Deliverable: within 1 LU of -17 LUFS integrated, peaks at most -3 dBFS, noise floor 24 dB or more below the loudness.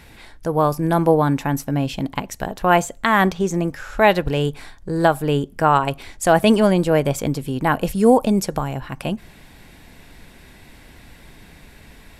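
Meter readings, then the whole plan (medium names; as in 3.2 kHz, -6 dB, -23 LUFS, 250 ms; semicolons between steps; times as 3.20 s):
loudness -19.5 LUFS; peak level -2.5 dBFS; loudness target -17.0 LUFS
-> trim +2.5 dB; peak limiter -3 dBFS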